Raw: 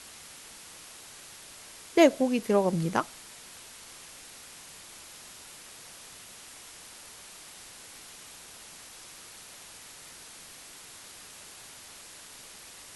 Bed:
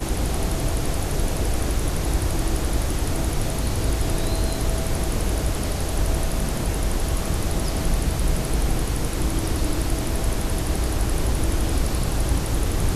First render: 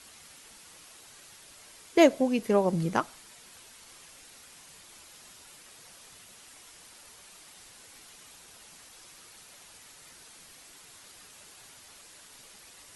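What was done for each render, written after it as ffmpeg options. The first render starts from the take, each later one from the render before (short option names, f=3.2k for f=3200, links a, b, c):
-af "afftdn=nr=6:nf=-49"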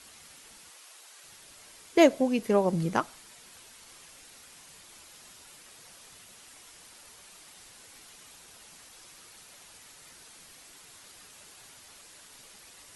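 -filter_complex "[0:a]asettb=1/sr,asplit=3[a][b][c];[a]atrim=end=0.704[d];[b]atrim=start=0.7:end=1.24,asetpts=PTS-STARTPTS,afade=t=in:d=0.004:c=qsin,afade=t=out:st=0.536:d=0.004:c=qsin,highpass=520[e];[c]atrim=start=1.236[f];[d][e]acrossfade=d=0.004:c1=hsin:c2=qsin[g];[g][f]acrossfade=d=0.004:c1=qsin:c2=hsin"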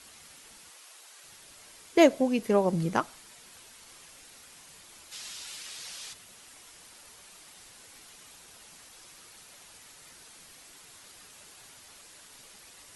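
-filter_complex "[0:a]asplit=3[a][b][c];[a]afade=t=out:st=5.11:d=0.02[d];[b]equalizer=f=4.2k:t=o:w=2.8:g=13,afade=t=in:st=5.11:d=0.02,afade=t=out:st=6.12:d=0.02[e];[c]afade=t=in:st=6.12:d=0.02[f];[d][e][f]amix=inputs=3:normalize=0"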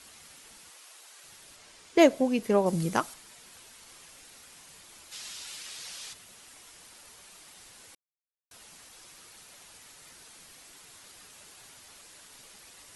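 -filter_complex "[0:a]asettb=1/sr,asplit=3[a][b][c];[a]atrim=end=1.564[d];[b]atrim=start=1.56:end=1.99,asetpts=PTS-STARTPTS,afade=t=in:d=0.004:c=qsin,afade=t=out:st=0.426:d=0.004:c=qsin,lowpass=8k[e];[c]atrim=start=1.986[f];[d][e]acrossfade=d=0.004:c1=hsin:c2=qsin[g];[g][f]acrossfade=d=0.004:c1=qsin:c2=hsin,asettb=1/sr,asplit=3[h][i][j];[h]atrim=end=2.664[k];[i]atrim=start=2.66:end=3.14,asetpts=PTS-STARTPTS,afade=t=in:d=0.004:c=qsin,afade=t=out:st=0.476:d=0.004:c=qsin,aemphasis=mode=production:type=cd[l];[j]atrim=start=3.136[m];[k][l]acrossfade=d=0.004:c1=hsin:c2=qsin[n];[n][m]acrossfade=d=0.004:c1=qsin:c2=hsin,asplit=3[o][p][q];[o]atrim=end=7.95,asetpts=PTS-STARTPTS,afade=t=out:st=7.946:d=0.004:c=hsin[r];[p]atrim=start=7.95:end=8.51,asetpts=PTS-STARTPTS,volume=0[s];[q]atrim=start=8.51,asetpts=PTS-STARTPTS,afade=t=in:d=0.004:c=hsin[t];[r][s][t]concat=n=3:v=0:a=1"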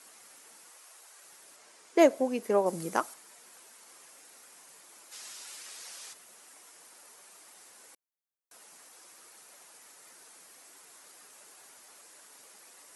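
-af "highpass=330,equalizer=f=3.4k:w=1:g=-8"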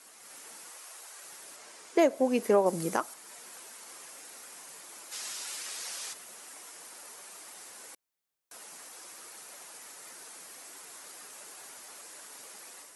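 -af "dynaudnorm=f=180:g=3:m=6.5dB,alimiter=limit=-14dB:level=0:latency=1:release=365"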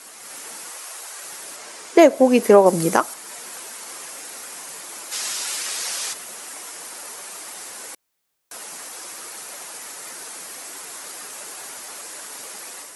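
-af "volume=12dB"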